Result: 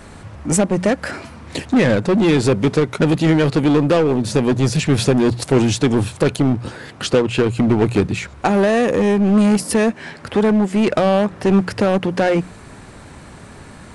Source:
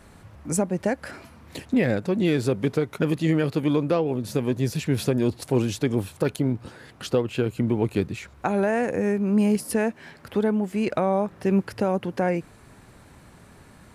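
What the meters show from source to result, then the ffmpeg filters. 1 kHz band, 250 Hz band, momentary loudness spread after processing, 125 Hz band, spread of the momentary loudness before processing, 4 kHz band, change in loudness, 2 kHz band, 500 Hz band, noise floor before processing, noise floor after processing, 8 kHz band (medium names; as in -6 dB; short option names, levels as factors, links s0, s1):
+8.0 dB, +8.0 dB, 7 LU, +7.5 dB, 8 LU, +11.0 dB, +8.0 dB, +9.0 dB, +7.5 dB, -51 dBFS, -40 dBFS, +9.5 dB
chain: -filter_complex "[0:a]bandreject=f=60:t=h:w=6,bandreject=f=120:t=h:w=6,bandreject=f=180:t=h:w=6,asplit=2[s0][s1];[s1]aeval=exprs='0.0596*(abs(mod(val(0)/0.0596+3,4)-2)-1)':c=same,volume=0.668[s2];[s0][s2]amix=inputs=2:normalize=0,aresample=22050,aresample=44100,volume=2.24"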